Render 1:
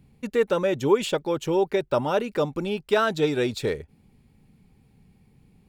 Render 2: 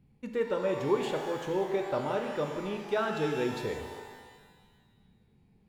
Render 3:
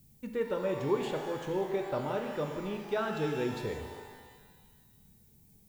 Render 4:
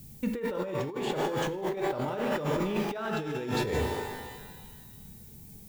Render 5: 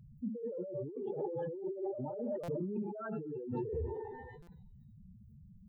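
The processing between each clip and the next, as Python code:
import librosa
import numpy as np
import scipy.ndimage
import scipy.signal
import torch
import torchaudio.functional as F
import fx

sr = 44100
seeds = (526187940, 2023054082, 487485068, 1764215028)

y1 = fx.high_shelf(x, sr, hz=4200.0, db=-8.5)
y1 = fx.rev_shimmer(y1, sr, seeds[0], rt60_s=1.5, semitones=12, shimmer_db=-8, drr_db=4.0)
y1 = y1 * librosa.db_to_amplitude(-8.5)
y2 = fx.low_shelf(y1, sr, hz=160.0, db=6.5)
y2 = fx.dmg_noise_colour(y2, sr, seeds[1], colour='violet', level_db=-62.0)
y2 = y2 * librosa.db_to_amplitude(-3.0)
y3 = fx.over_compress(y2, sr, threshold_db=-39.0, ratio=-1.0)
y3 = y3 * librosa.db_to_amplitude(7.5)
y4 = fx.spec_expand(y3, sr, power=3.3)
y4 = fx.buffer_glitch(y4, sr, at_s=(2.43, 4.42), block=256, repeats=8)
y4 = y4 * librosa.db_to_amplitude(-7.0)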